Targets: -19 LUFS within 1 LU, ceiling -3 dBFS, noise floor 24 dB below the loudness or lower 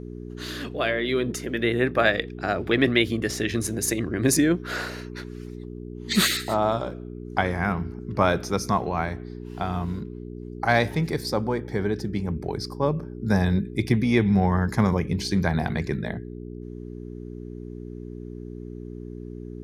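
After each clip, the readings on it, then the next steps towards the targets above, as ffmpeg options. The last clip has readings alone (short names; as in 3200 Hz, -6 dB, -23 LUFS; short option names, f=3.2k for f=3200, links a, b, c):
hum 60 Hz; harmonics up to 420 Hz; hum level -35 dBFS; loudness -25.0 LUFS; peak -5.5 dBFS; loudness target -19.0 LUFS
-> -af "bandreject=f=60:t=h:w=4,bandreject=f=120:t=h:w=4,bandreject=f=180:t=h:w=4,bandreject=f=240:t=h:w=4,bandreject=f=300:t=h:w=4,bandreject=f=360:t=h:w=4,bandreject=f=420:t=h:w=4"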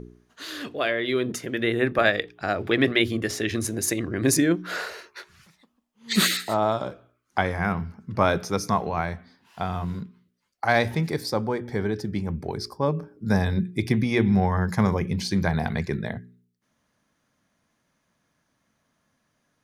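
hum none; loudness -25.0 LUFS; peak -6.0 dBFS; loudness target -19.0 LUFS
-> -af "volume=6dB,alimiter=limit=-3dB:level=0:latency=1"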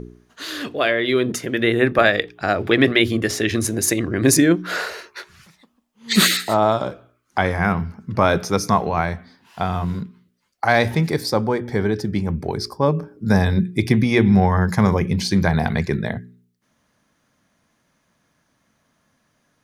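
loudness -19.5 LUFS; peak -3.0 dBFS; noise floor -67 dBFS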